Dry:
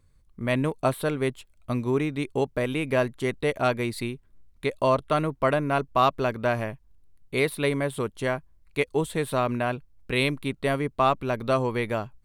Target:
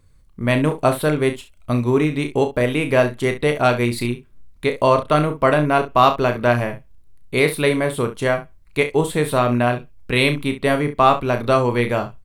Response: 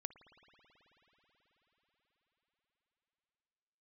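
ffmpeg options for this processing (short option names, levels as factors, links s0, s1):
-filter_complex "[0:a]aecho=1:1:33|67:0.398|0.211,asplit=2[s0][s1];[1:a]atrim=start_sample=2205,atrim=end_sample=6615[s2];[s1][s2]afir=irnorm=-1:irlink=0,volume=0.355[s3];[s0][s3]amix=inputs=2:normalize=0,volume=1.78"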